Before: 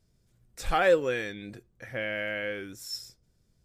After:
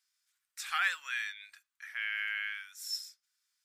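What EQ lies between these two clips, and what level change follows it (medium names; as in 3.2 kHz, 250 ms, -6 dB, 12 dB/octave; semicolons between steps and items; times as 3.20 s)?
inverse Chebyshev high-pass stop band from 500 Hz, stop band 50 dB; 0.0 dB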